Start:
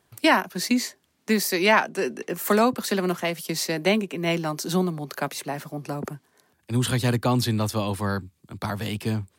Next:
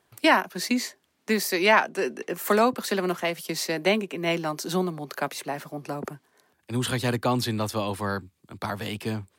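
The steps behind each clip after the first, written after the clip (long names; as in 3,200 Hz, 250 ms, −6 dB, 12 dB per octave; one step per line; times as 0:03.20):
bass and treble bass −6 dB, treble −3 dB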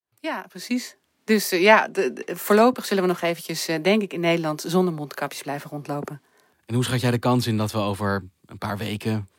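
fade in at the beginning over 1.38 s
harmonic and percussive parts rebalanced harmonic +6 dB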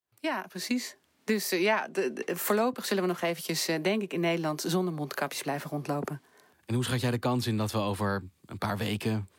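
downward compressor 3 to 1, threshold −27 dBFS, peak gain reduction 13.5 dB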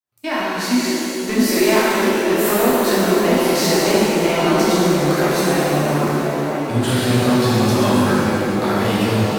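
echo through a band-pass that steps 655 ms, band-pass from 280 Hz, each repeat 0.7 octaves, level −2 dB
leveller curve on the samples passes 2
reverb with rising layers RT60 2.5 s, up +7 semitones, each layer −8 dB, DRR −7.5 dB
level −2.5 dB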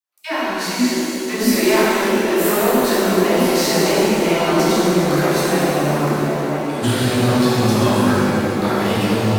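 all-pass dispersion lows, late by 135 ms, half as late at 310 Hz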